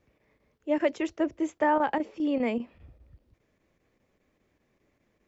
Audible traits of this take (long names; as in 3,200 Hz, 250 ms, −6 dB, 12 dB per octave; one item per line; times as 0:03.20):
chopped level 5 Hz, depth 60%, duty 90%